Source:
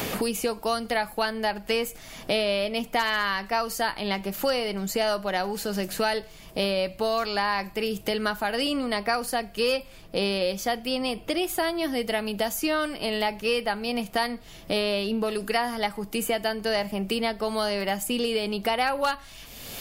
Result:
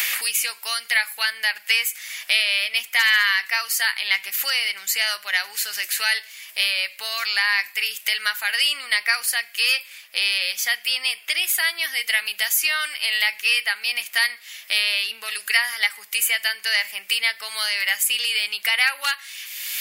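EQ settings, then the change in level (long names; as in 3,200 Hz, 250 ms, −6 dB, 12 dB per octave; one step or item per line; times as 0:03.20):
high-pass with resonance 2,000 Hz, resonance Q 2.9
high-shelf EQ 5,600 Hz +10 dB
+3.5 dB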